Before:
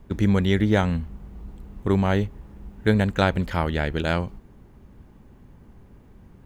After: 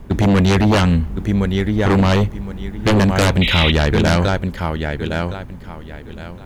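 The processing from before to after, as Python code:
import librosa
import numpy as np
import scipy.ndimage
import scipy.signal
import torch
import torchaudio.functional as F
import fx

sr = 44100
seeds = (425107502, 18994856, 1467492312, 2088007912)

y = fx.echo_feedback(x, sr, ms=1064, feedback_pct=21, wet_db=-9.0)
y = fx.fold_sine(y, sr, drive_db=14, ceiling_db=-3.5)
y = fx.spec_paint(y, sr, seeds[0], shape='noise', start_s=3.41, length_s=0.31, low_hz=1900.0, high_hz=4000.0, level_db=-13.0)
y = y * 10.0 ** (-6.0 / 20.0)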